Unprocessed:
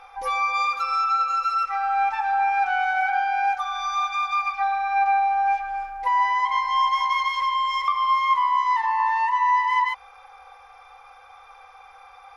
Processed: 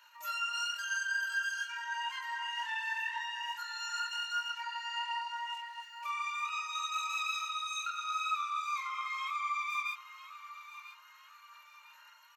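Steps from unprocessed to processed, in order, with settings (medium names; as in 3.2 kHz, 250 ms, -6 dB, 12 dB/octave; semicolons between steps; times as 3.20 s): chorus voices 4, 0.94 Hz, delay 27 ms, depth 3 ms; peaking EQ 1.6 kHz +4 dB 1.6 oct; pitch shift +3 st; differentiator; feedback delay 996 ms, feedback 37%, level -14.5 dB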